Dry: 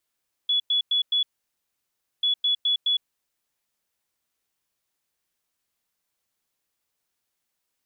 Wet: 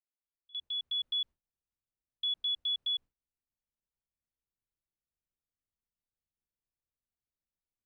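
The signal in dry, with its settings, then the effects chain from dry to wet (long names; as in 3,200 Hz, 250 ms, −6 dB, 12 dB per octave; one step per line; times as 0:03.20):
beeps in groups sine 3,400 Hz, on 0.11 s, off 0.10 s, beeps 4, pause 1.00 s, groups 2, −19 dBFS
fade in at the beginning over 1.09 s
noise gate with hold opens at −25 dBFS
spectral tilt −5 dB per octave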